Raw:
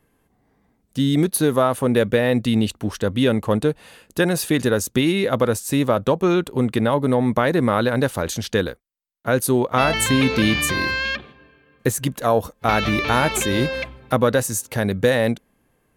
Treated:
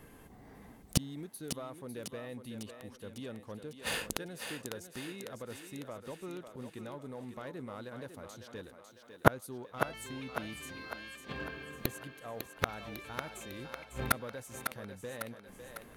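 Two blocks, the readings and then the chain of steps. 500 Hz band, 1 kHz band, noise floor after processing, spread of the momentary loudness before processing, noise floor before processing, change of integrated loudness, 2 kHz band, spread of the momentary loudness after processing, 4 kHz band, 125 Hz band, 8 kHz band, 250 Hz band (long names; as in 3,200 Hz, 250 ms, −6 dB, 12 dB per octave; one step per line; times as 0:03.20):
−21.0 dB, −16.5 dB, −56 dBFS, 6 LU, −65 dBFS, −19.5 dB, −16.5 dB, 13 LU, −17.5 dB, −19.5 dB, −16.5 dB, −22.5 dB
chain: leveller curve on the samples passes 1
gate with flip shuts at −20 dBFS, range −40 dB
feedback echo with a high-pass in the loop 551 ms, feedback 54%, high-pass 280 Hz, level −7 dB
level +11 dB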